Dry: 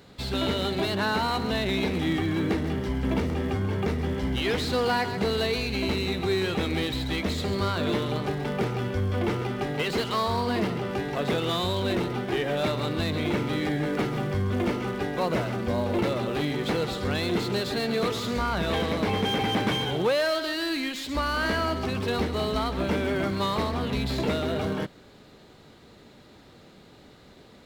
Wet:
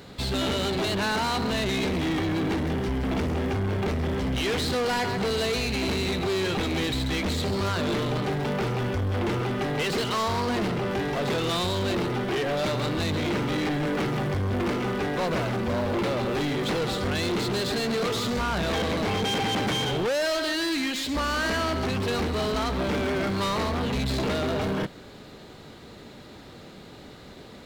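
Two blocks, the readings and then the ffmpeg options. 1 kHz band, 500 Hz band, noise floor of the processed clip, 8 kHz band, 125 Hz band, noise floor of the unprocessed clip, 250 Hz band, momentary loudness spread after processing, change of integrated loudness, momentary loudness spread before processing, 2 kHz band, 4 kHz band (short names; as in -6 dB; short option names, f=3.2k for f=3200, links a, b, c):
+0.5 dB, 0.0 dB, -45 dBFS, +5.5 dB, +0.5 dB, -52 dBFS, +0.5 dB, 4 LU, +0.5 dB, 3 LU, +1.0 dB, +1.5 dB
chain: -af "asoftclip=type=tanh:threshold=-30dB,volume=6.5dB"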